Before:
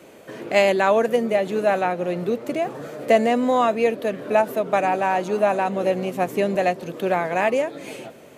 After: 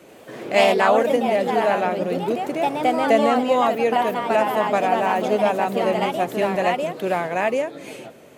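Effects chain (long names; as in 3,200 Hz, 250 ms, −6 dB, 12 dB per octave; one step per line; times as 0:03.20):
delay with pitch and tempo change per echo 84 ms, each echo +2 semitones, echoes 2
level −1 dB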